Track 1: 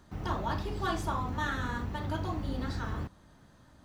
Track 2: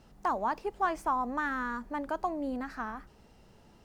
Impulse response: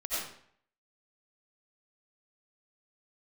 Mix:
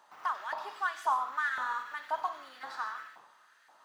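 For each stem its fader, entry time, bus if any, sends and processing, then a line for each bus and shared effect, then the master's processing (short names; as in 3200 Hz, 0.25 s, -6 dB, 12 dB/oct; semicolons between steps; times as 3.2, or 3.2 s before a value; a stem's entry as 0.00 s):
-5.5 dB, 0.00 s, send -5.5 dB, limiter -30 dBFS, peak gain reduction 10 dB
-5.5 dB, 0.00 s, no send, median filter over 9 samples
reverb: on, RT60 0.60 s, pre-delay 50 ms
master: LFO high-pass saw up 1.9 Hz 820–1800 Hz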